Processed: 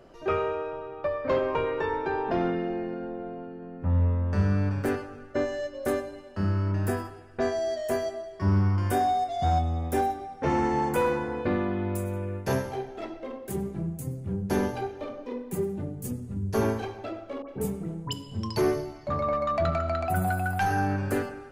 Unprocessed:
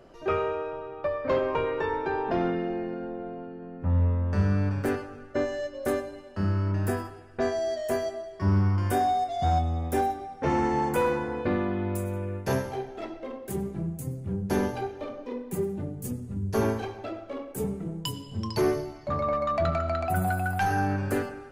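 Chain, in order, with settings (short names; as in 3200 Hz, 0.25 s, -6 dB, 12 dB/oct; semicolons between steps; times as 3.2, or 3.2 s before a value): 17.42–18.13 dispersion highs, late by 68 ms, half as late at 1500 Hz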